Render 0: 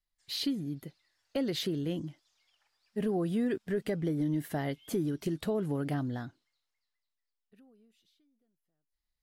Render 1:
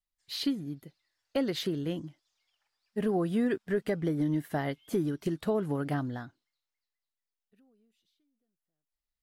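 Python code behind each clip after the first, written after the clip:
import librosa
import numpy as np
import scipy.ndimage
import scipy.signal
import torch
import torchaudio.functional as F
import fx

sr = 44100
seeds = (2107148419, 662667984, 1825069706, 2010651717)

y = fx.dynamic_eq(x, sr, hz=1200.0, q=0.89, threshold_db=-50.0, ratio=4.0, max_db=5)
y = fx.upward_expand(y, sr, threshold_db=-42.0, expansion=1.5)
y = y * 10.0 ** (2.5 / 20.0)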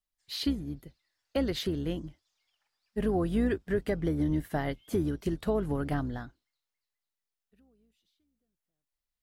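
y = fx.octave_divider(x, sr, octaves=2, level_db=-6.0)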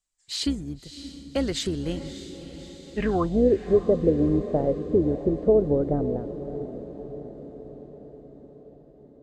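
y = fx.filter_sweep_lowpass(x, sr, from_hz=7700.0, to_hz=520.0, start_s=2.7, end_s=3.43, q=4.8)
y = fx.echo_diffused(y, sr, ms=608, feedback_pct=61, wet_db=-12)
y = y * 10.0 ** (3.0 / 20.0)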